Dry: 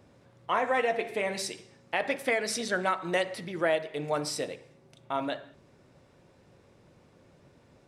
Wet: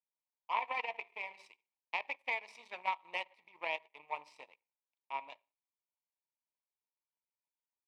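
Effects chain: power-law waveshaper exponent 2; two resonant band-passes 1.5 kHz, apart 1.3 oct; trim +7 dB

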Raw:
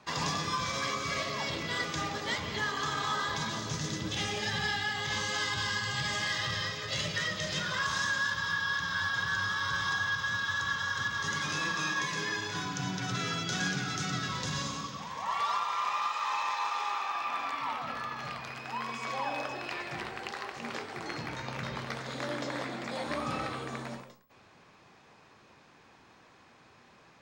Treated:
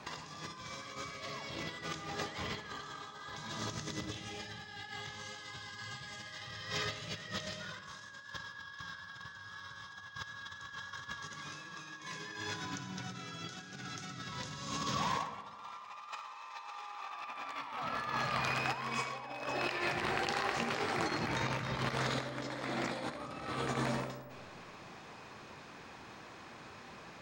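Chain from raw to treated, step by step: compressor with a negative ratio -40 dBFS, ratio -0.5; reverberation RT60 1.5 s, pre-delay 20 ms, DRR 9.5 dB

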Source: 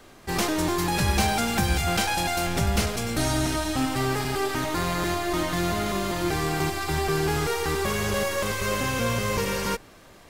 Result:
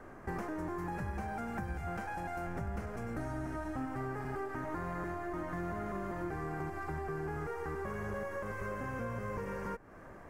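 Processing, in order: compression 6:1, threshold -36 dBFS, peak gain reduction 17 dB; FFT filter 1.7 kHz 0 dB, 3.7 kHz -25 dB, 6.1 kHz -17 dB

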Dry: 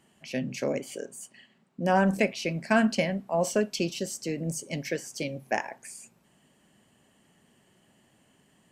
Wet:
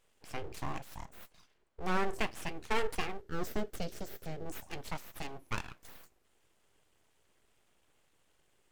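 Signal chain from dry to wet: full-wave rectifier; 3.21–4.46 s: fifteen-band graphic EQ 400 Hz +6 dB, 1 kHz -10 dB, 2.5 kHz -6 dB, 10 kHz -6 dB; trim -6.5 dB

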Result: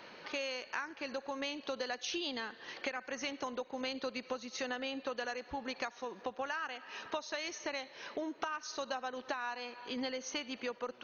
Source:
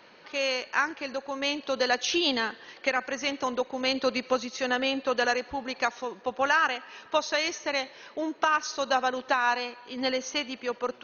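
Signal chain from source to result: compression 6:1, threshold -38 dBFS, peak gain reduction 17.5 dB; trim +1.5 dB

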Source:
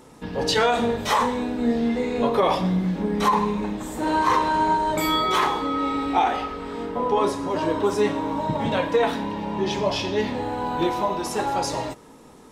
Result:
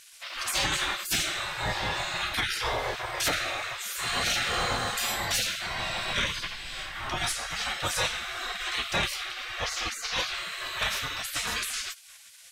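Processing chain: spectral gate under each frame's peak -25 dB weak; sine folder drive 5 dB, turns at -22 dBFS; 5.64–7.33 s: added noise brown -49 dBFS; trim +2 dB

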